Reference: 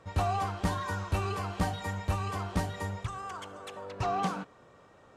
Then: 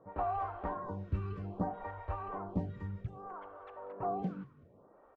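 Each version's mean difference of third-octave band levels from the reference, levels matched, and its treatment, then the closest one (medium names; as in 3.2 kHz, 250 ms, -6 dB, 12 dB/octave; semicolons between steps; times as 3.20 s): 10.0 dB: low-pass 1.1 kHz 12 dB/octave; peaking EQ 100 Hz -3 dB; on a send: frequency-shifting echo 189 ms, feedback 39%, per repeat -48 Hz, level -20 dB; on the sum: lamp-driven phase shifter 0.62 Hz; trim -1 dB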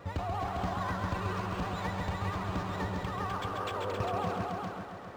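7.5 dB: compression 6:1, threshold -41 dBFS, peak gain reduction 16 dB; vibrato 9.1 Hz 99 cents; on a send: multi-head delay 134 ms, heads all three, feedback 44%, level -6.5 dB; on the sum: decimation joined by straight lines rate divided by 4×; trim +7.5 dB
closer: second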